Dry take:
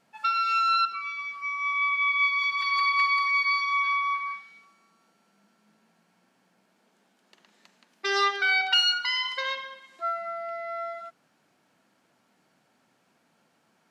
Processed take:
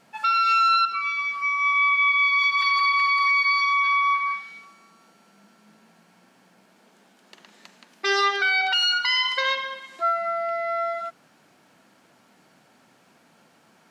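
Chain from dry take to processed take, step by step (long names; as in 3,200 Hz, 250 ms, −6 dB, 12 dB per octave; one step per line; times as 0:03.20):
in parallel at −2 dB: downward compressor, threshold −36 dBFS, peak gain reduction 16.5 dB
on the sum: brickwall limiter −18.5 dBFS, peak gain reduction 8 dB
level +4.5 dB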